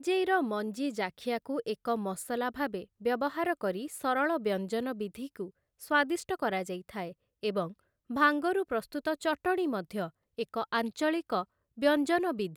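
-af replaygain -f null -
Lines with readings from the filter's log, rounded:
track_gain = +11.8 dB
track_peak = 0.161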